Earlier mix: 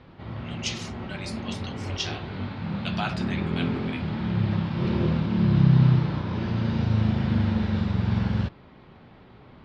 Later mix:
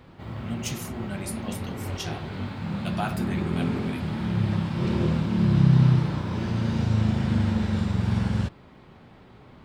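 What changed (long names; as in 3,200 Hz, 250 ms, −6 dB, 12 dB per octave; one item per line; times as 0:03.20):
speech: add spectral tilt −4 dB per octave
master: remove low-pass filter 4,900 Hz 24 dB per octave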